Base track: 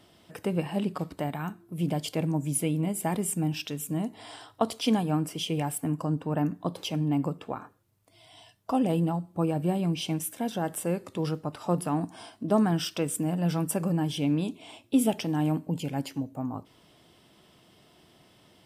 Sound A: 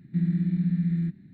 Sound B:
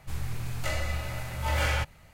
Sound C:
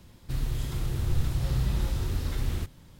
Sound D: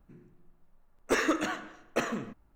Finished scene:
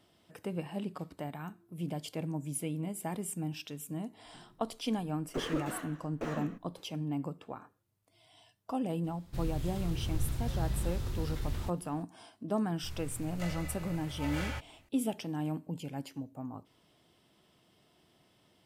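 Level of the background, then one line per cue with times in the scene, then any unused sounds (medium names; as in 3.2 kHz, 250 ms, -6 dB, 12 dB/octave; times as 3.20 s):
base track -8.5 dB
4.25 s: add D -5 dB + slew-rate limiter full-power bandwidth 24 Hz
9.04 s: add C -6.5 dB
12.76 s: add B -10.5 dB
not used: A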